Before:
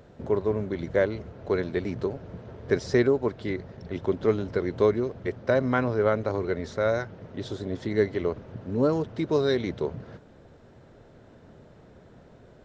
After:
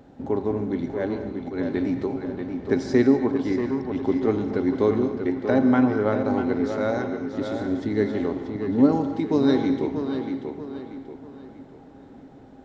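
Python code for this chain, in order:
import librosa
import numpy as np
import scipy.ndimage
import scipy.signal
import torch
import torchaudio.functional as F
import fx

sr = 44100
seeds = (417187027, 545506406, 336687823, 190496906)

y = fx.auto_swell(x, sr, attack_ms=129.0, at=(0.79, 1.69))
y = fx.small_body(y, sr, hz=(270.0, 800.0), ring_ms=70, db=15)
y = fx.echo_tape(y, sr, ms=636, feedback_pct=42, wet_db=-5.0, lp_hz=4700.0, drive_db=12.0, wow_cents=12)
y = fx.rev_gated(y, sr, seeds[0], gate_ms=280, shape='flat', drr_db=8.0)
y = y * librosa.db_to_amplitude(-2.0)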